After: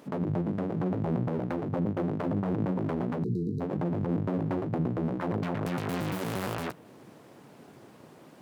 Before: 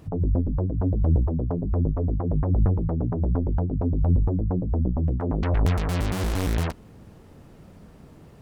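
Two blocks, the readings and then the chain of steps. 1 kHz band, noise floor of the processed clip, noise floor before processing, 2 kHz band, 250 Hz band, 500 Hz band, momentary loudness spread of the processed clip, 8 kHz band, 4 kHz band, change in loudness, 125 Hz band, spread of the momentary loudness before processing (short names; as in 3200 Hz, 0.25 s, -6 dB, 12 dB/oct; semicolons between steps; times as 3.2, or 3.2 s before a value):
-0.5 dB, -53 dBFS, -49 dBFS, -1.5 dB, -1.5 dB, -1.0 dB, 3 LU, n/a, -5.0 dB, -6.0 dB, -9.0 dB, 4 LU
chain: full-wave rectifier; HPF 120 Hz 24 dB/oct; dynamic EQ 6100 Hz, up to -5 dB, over -54 dBFS, Q 0.72; limiter -22 dBFS, peak gain reduction 6 dB; spectral delete 3.23–3.61, 490–3800 Hz; gain +1.5 dB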